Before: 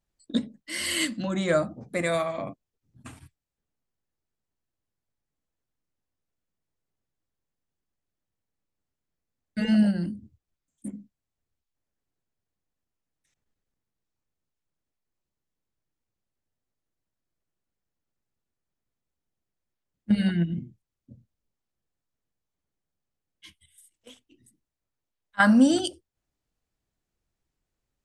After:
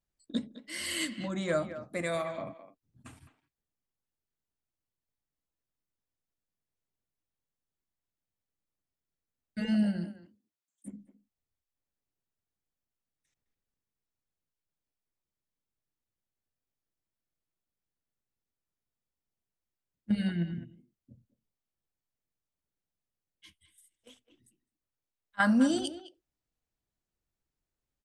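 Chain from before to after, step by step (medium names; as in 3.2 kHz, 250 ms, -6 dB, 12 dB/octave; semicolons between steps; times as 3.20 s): 10.04–10.86 s: high-pass 370 Hz -> 1.3 kHz 6 dB/octave; speakerphone echo 210 ms, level -12 dB; trim -6.5 dB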